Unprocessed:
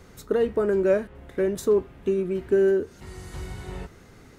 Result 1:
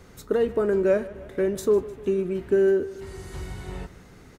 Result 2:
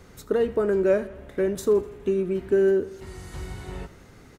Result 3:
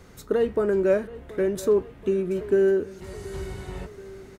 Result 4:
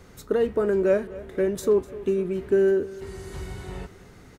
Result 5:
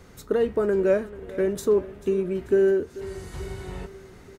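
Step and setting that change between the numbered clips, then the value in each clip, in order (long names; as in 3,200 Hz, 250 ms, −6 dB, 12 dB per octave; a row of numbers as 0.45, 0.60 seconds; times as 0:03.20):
repeating echo, delay time: 152, 83, 729, 250, 439 milliseconds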